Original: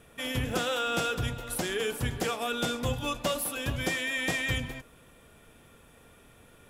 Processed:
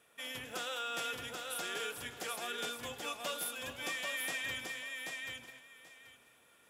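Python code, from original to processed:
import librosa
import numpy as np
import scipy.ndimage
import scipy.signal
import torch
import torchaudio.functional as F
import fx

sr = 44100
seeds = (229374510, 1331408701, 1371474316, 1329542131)

y = fx.highpass(x, sr, hz=890.0, slope=6)
y = fx.echo_feedback(y, sr, ms=784, feedback_pct=18, wet_db=-4)
y = y * librosa.db_to_amplitude(-7.0)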